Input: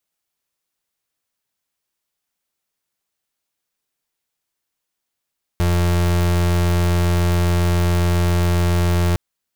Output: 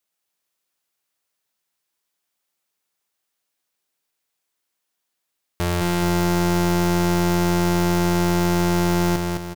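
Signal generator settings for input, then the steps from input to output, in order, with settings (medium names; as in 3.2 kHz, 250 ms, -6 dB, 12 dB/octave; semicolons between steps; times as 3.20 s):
pulse 87.3 Hz, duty 35% -16.5 dBFS 3.56 s
bass shelf 130 Hz -10.5 dB; on a send: feedback delay 212 ms, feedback 44%, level -4 dB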